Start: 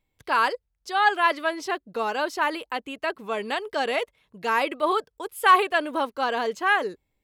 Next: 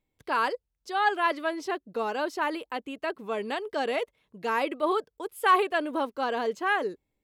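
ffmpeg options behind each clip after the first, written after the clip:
-af "equalizer=f=310:w=0.59:g=6,volume=0.501"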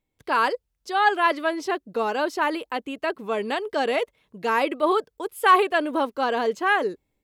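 -af "dynaudnorm=f=150:g=3:m=1.78"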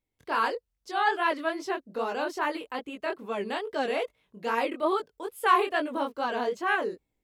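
-af "flanger=delay=17:depth=7.9:speed=2.4,volume=0.75"

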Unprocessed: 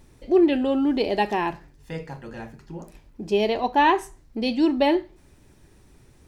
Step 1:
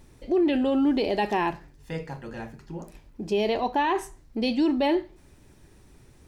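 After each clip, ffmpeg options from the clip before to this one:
-af "alimiter=limit=0.15:level=0:latency=1:release=19"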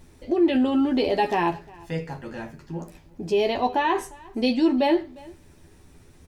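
-filter_complex "[0:a]asplit=2[s0][s1];[s1]adelay=12,volume=0.562[s2];[s0][s2]amix=inputs=2:normalize=0,aecho=1:1:353:0.0668,volume=1.12"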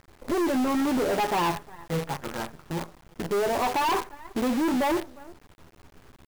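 -af "lowpass=f=1200:t=q:w=2.8,asoftclip=type=hard:threshold=0.0891,acrusher=bits=6:dc=4:mix=0:aa=0.000001"

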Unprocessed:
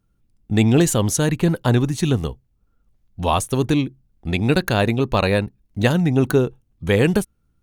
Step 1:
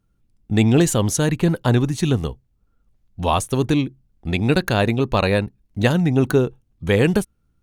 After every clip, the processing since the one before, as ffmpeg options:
-af "highshelf=f=12000:g=-4.5"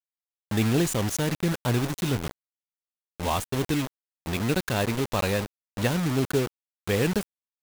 -af "acrusher=bits=3:mix=0:aa=0.000001,volume=0.398"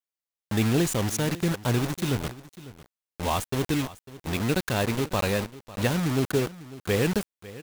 -af "aecho=1:1:549:0.133"

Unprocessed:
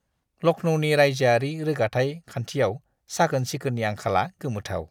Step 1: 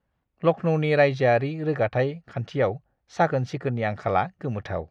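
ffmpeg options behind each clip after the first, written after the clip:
-af "lowpass=2600"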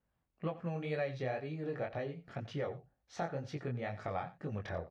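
-af "acompressor=threshold=0.0355:ratio=4,flanger=delay=19:depth=5:speed=2,aecho=1:1:88:0.15,volume=0.631"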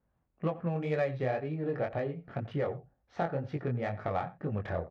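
-af "adynamicsmooth=sensitivity=4.5:basefreq=2000,volume=2"

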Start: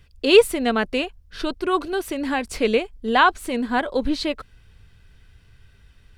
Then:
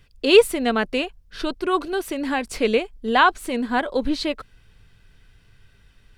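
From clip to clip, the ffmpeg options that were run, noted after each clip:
-af "equalizer=f=69:w=1.8:g=-8.5"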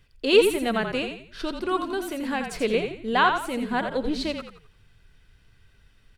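-filter_complex "[0:a]asplit=5[s0][s1][s2][s3][s4];[s1]adelay=85,afreqshift=-39,volume=0.473[s5];[s2]adelay=170,afreqshift=-78,volume=0.17[s6];[s3]adelay=255,afreqshift=-117,volume=0.0617[s7];[s4]adelay=340,afreqshift=-156,volume=0.0221[s8];[s0][s5][s6][s7][s8]amix=inputs=5:normalize=0,volume=0.596"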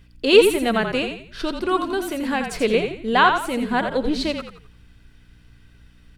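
-af "aeval=exprs='val(0)+0.00158*(sin(2*PI*60*n/s)+sin(2*PI*2*60*n/s)/2+sin(2*PI*3*60*n/s)/3+sin(2*PI*4*60*n/s)/4+sin(2*PI*5*60*n/s)/5)':c=same,volume=1.68"

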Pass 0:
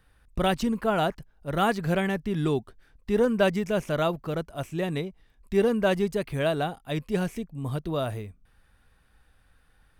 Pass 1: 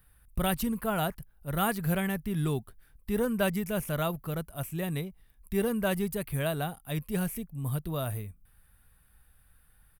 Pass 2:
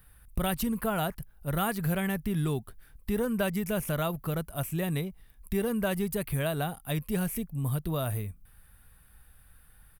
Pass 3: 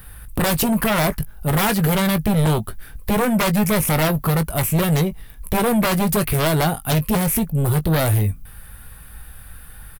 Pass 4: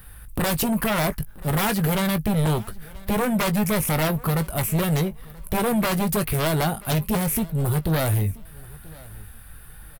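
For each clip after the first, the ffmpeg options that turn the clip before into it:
-af "firequalizer=gain_entry='entry(140,0);entry(310,-8);entry(1200,-4);entry(6300,-5);entry(11000,14)':delay=0.05:min_phase=1"
-af "acompressor=threshold=0.0224:ratio=2.5,volume=1.78"
-filter_complex "[0:a]aeval=exprs='0.178*sin(PI/2*4.47*val(0)/0.178)':c=same,asplit=2[s0][s1];[s1]adelay=19,volume=0.266[s2];[s0][s2]amix=inputs=2:normalize=0"
-af "aecho=1:1:982|1964:0.075|0.018,volume=0.631"

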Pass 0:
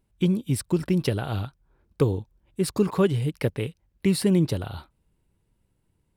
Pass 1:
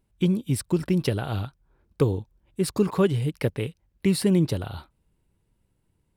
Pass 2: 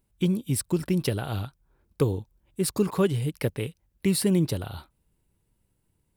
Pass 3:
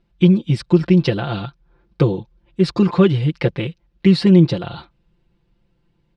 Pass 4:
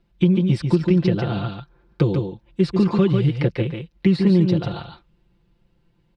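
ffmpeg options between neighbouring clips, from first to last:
-af anull
-af "highshelf=f=7500:g=9.5,volume=0.794"
-af "lowpass=f=4600:w=0.5412,lowpass=f=4600:w=1.3066,aecho=1:1:5.8:0.95,volume=2.11"
-filter_complex "[0:a]aecho=1:1:143:0.447,acrossover=split=420|1900[s0][s1][s2];[s0]acompressor=threshold=0.2:ratio=4[s3];[s1]acompressor=threshold=0.0355:ratio=4[s4];[s2]acompressor=threshold=0.0126:ratio=4[s5];[s3][s4][s5]amix=inputs=3:normalize=0"

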